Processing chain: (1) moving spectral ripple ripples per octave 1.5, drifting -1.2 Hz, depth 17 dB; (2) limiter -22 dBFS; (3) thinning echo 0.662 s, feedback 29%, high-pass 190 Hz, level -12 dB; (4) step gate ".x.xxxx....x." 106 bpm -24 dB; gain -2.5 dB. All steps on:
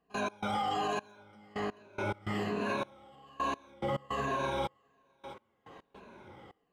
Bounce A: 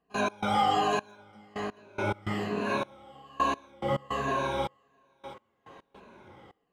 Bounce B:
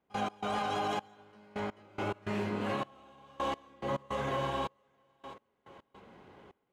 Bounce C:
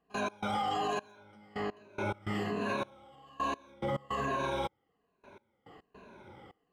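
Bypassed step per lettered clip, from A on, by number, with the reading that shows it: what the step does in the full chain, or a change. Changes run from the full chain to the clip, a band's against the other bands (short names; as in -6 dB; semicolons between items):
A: 2, mean gain reduction 2.5 dB; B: 1, momentary loudness spread change -3 LU; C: 3, momentary loudness spread change -6 LU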